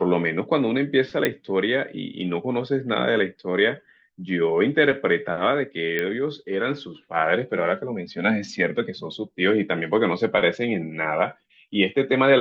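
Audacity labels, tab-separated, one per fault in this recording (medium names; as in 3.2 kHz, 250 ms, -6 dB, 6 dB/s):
1.250000	1.250000	pop -7 dBFS
5.990000	5.990000	pop -12 dBFS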